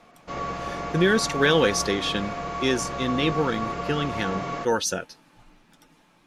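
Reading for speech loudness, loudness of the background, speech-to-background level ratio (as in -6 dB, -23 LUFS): -25.0 LUFS, -31.5 LUFS, 6.5 dB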